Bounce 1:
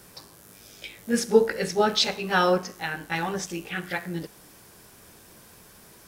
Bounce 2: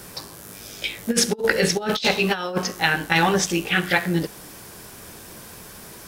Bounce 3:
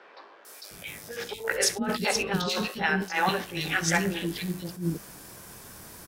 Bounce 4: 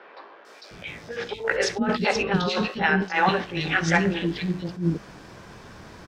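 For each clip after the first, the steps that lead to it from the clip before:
dynamic EQ 3300 Hz, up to +5 dB, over -44 dBFS, Q 1.5; negative-ratio compressor -26 dBFS, ratio -0.5; gain +6.5 dB
three bands offset in time mids, highs, lows 0.45/0.71 s, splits 390/3000 Hz; attack slew limiter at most 160 dB/s; gain -4 dB
air absorption 170 m; gain +5.5 dB

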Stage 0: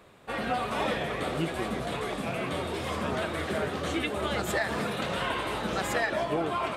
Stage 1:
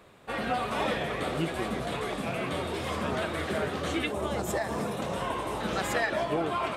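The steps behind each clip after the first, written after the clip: spectral gain 4.11–5.6, 1200–5000 Hz -7 dB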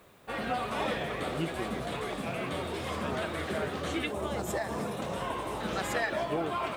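added noise blue -67 dBFS; gain -2.5 dB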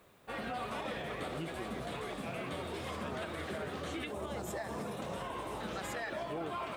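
limiter -25 dBFS, peak gain reduction 6.5 dB; gain -5 dB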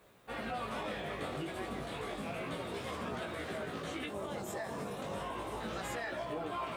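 chorus 0.32 Hz, delay 16.5 ms, depth 4.6 ms; gain +3 dB

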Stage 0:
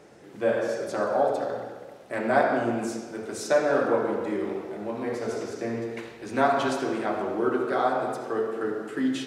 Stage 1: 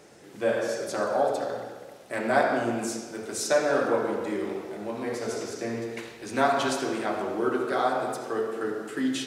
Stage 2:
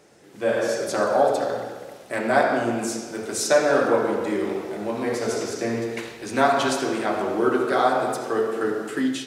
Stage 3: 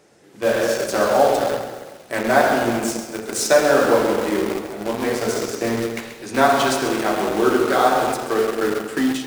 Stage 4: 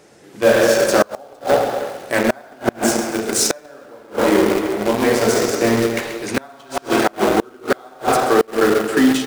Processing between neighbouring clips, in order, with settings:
high shelf 3200 Hz +9 dB; gain -1.5 dB
AGC gain up to 8.5 dB; gain -2.5 dB
in parallel at -6.5 dB: bit-crush 4-bit; on the sum: lo-fi delay 0.134 s, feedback 55%, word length 6-bit, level -11 dB
speakerphone echo 0.31 s, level -9 dB; flipped gate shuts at -8 dBFS, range -31 dB; gain +6 dB

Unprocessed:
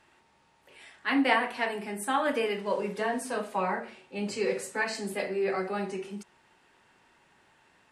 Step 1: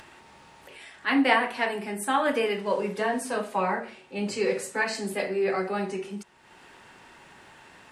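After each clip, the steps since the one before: upward compressor, threshold -44 dBFS; gain +3 dB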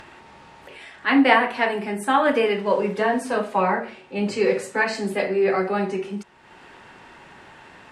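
LPF 3300 Hz 6 dB/oct; gain +6 dB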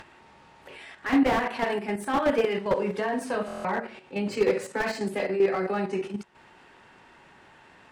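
level quantiser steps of 9 dB; stuck buffer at 3.46, samples 1024, times 7; slew limiter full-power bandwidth 78 Hz

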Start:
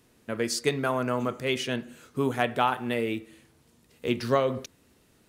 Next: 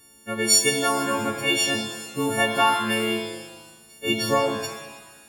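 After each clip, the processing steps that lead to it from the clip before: frequency quantiser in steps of 4 st; shimmer reverb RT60 1.2 s, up +7 st, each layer -8 dB, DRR 5.5 dB; gain +1.5 dB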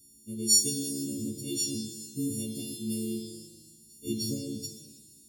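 inverse Chebyshev band-stop 850–1800 Hz, stop band 70 dB; gain -3.5 dB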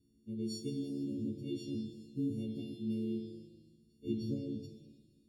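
air absorption 410 m; gain -2.5 dB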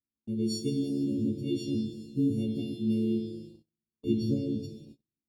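gate -56 dBFS, range -36 dB; gain +8.5 dB

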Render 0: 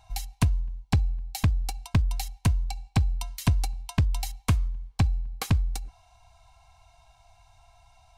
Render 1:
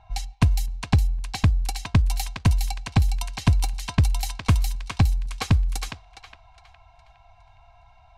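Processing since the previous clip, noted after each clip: thinning echo 0.412 s, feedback 44%, high-pass 1200 Hz, level -3 dB; low-pass opened by the level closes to 2300 Hz, open at -23 dBFS; gain +4 dB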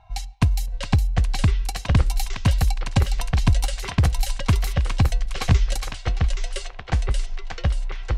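echoes that change speed 0.577 s, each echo -6 st, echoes 2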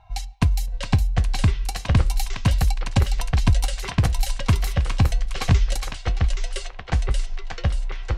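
flange 0.31 Hz, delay 2 ms, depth 8.7 ms, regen -79%; gain +4.5 dB

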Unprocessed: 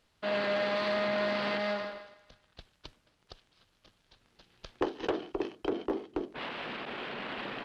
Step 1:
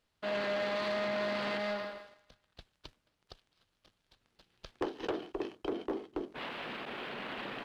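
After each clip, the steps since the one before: sample leveller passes 1; gain -6 dB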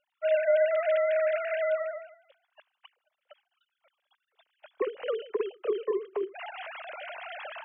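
sine-wave speech; gain +7.5 dB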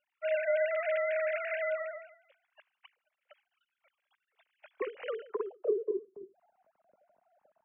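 low-pass sweep 2300 Hz -> 200 Hz, 5.08–6.14; gain -6.5 dB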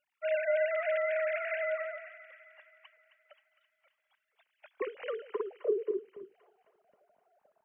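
thin delay 0.264 s, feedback 58%, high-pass 1400 Hz, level -11 dB

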